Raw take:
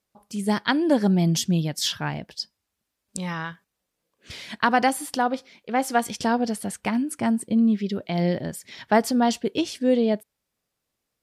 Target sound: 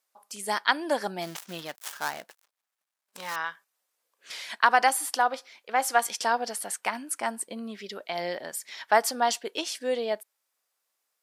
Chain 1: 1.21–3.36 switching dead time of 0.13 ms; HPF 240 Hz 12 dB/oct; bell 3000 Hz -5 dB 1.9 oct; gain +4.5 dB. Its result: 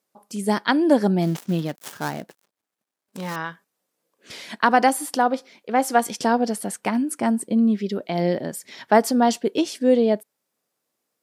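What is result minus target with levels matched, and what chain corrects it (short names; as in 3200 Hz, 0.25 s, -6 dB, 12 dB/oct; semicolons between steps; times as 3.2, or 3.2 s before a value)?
250 Hz band +12.5 dB
1.21–3.36 switching dead time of 0.13 ms; HPF 870 Hz 12 dB/oct; bell 3000 Hz -5 dB 1.9 oct; gain +4.5 dB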